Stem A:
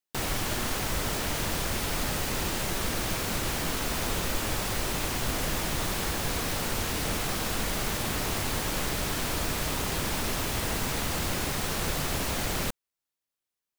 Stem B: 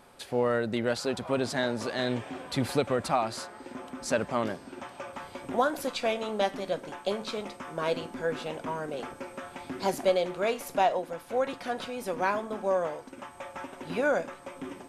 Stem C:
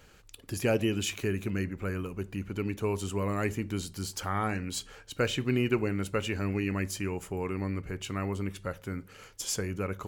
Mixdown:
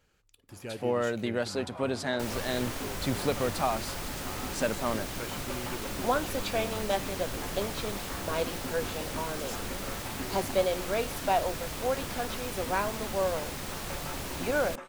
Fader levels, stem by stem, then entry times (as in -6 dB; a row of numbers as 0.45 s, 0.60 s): -7.5 dB, -2.0 dB, -13.0 dB; 2.05 s, 0.50 s, 0.00 s